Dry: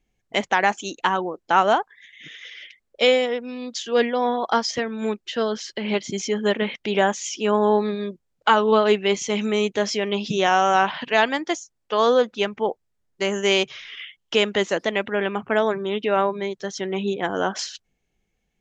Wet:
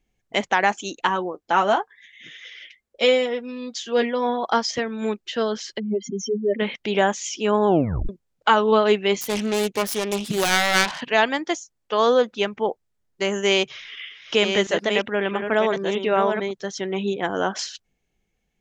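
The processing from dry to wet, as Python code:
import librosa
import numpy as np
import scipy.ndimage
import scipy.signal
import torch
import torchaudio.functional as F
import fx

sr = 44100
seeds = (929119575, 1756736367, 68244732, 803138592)

y = fx.notch_comb(x, sr, f0_hz=150.0, at=(1.07, 4.44))
y = fx.spec_expand(y, sr, power=3.4, at=(5.78, 6.58), fade=0.02)
y = fx.self_delay(y, sr, depth_ms=0.59, at=(9.21, 11.01))
y = fx.reverse_delay(y, sr, ms=640, wet_db=-6, at=(13.39, 16.51))
y = fx.edit(y, sr, fx.tape_stop(start_s=7.67, length_s=0.42), tone=tone)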